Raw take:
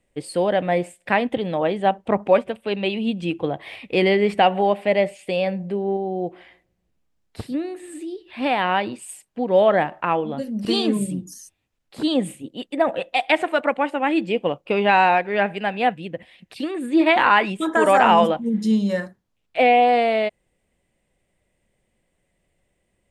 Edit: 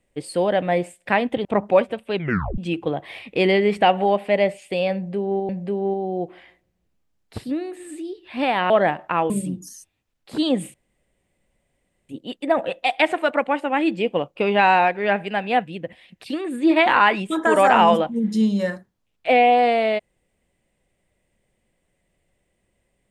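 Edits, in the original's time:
0:01.45–0:02.02: remove
0:02.72: tape stop 0.43 s
0:05.52–0:06.06: repeat, 2 plays
0:08.73–0:09.63: remove
0:10.23–0:10.95: remove
0:12.39: splice in room tone 1.35 s

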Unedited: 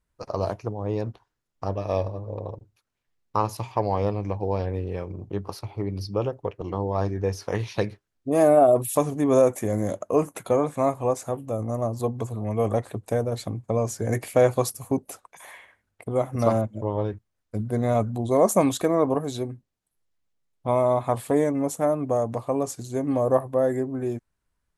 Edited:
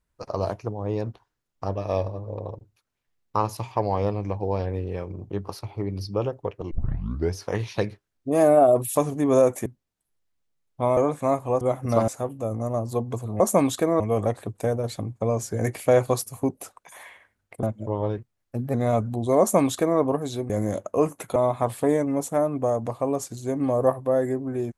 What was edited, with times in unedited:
0:06.71: tape start 0.64 s
0:09.66–0:10.52: swap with 0:19.52–0:20.83
0:16.11–0:16.58: move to 0:11.16
0:17.13–0:17.76: play speed 113%
0:18.42–0:19.02: duplicate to 0:12.48

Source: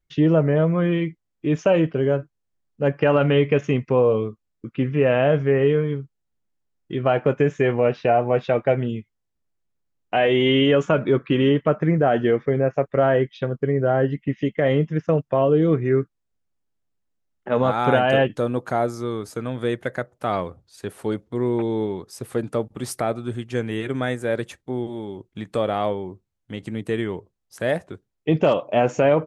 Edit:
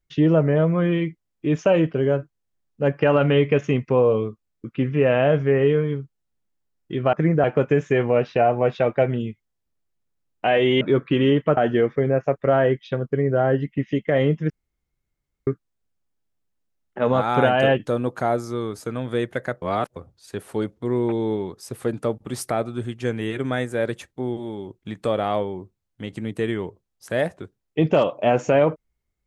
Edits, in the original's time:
0:10.50–0:11.00: remove
0:11.76–0:12.07: move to 0:07.13
0:15.00–0:15.97: fill with room tone
0:20.12–0:20.46: reverse

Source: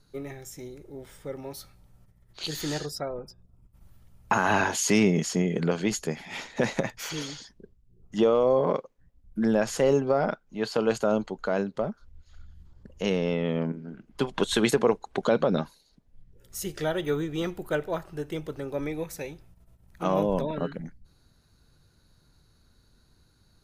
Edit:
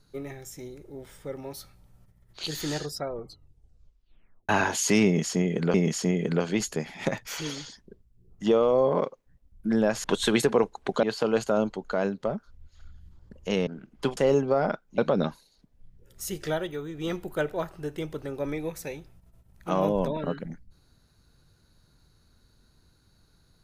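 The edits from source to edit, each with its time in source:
0:03.10: tape stop 1.39 s
0:05.05–0:05.74: repeat, 2 plays
0:06.36–0:06.77: remove
0:09.76–0:10.57: swap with 0:14.33–0:15.32
0:13.21–0:13.83: remove
0:16.86–0:17.46: duck −8 dB, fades 0.25 s

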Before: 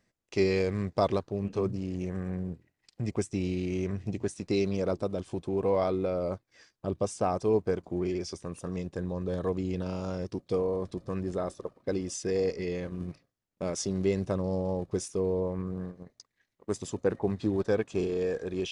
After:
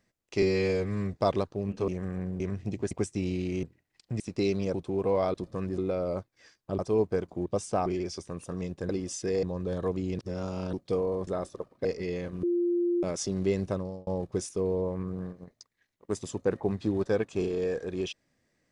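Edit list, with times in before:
0:00.42–0:00.90: time-stretch 1.5×
0:01.64–0:02.00: remove
0:02.52–0:03.09: swap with 0:03.81–0:04.32
0:04.86–0:05.33: remove
0:06.94–0:07.34: move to 0:08.01
0:09.80–0:10.34: reverse
0:10.88–0:11.32: move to 0:05.93
0:11.90–0:12.44: move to 0:09.04
0:13.02–0:13.62: beep over 348 Hz −23.5 dBFS
0:14.29–0:14.66: fade out

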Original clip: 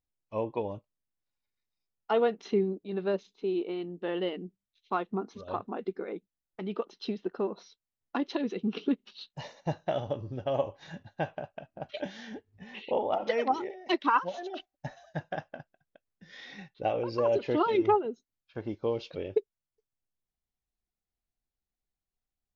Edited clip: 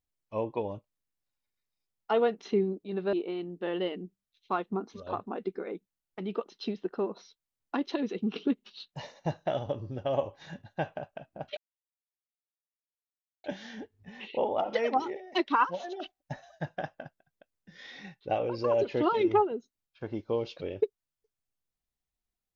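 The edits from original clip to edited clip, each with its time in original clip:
0:03.13–0:03.54: remove
0:11.98: splice in silence 1.87 s

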